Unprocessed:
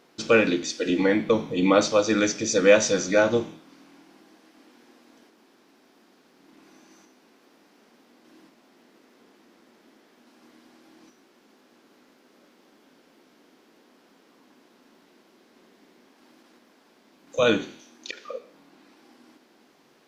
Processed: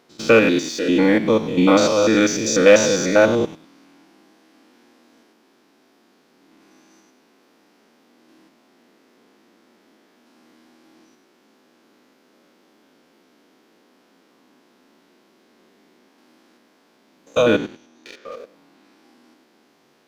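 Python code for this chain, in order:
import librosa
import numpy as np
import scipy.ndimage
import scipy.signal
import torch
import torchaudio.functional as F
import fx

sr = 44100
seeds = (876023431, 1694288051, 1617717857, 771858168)

y = fx.spec_steps(x, sr, hold_ms=100)
y = fx.high_shelf(y, sr, hz=2500.0, db=-8.5, at=(17.42, 18.32))
y = fx.leveller(y, sr, passes=1)
y = F.gain(torch.from_numpy(y), 4.0).numpy()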